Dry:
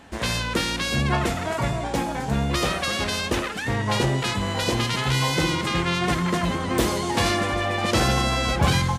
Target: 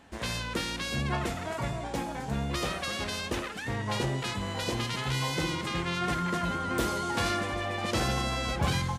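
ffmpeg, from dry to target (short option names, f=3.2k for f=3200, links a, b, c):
-filter_complex "[0:a]asettb=1/sr,asplit=3[a][b][c];[a]atrim=end=5.974[d];[b]atrim=start=5.97:end=7.41,asetpts=PTS-STARTPTS,afade=t=in:d=0.004:c=qsin,afade=t=out:st=1.436:d=0.004:c=qsin,aeval=exprs='val(0)+0.0562*sin(2*PI*1400*n/s)':c=same[e];[c]atrim=start=7.406[f];[d][e]acrossfade=d=0.004:c1=hsin:c2=qsin[g];[g][f]acrossfade=d=0.004:c1=qsin:c2=hsin,volume=-8dB"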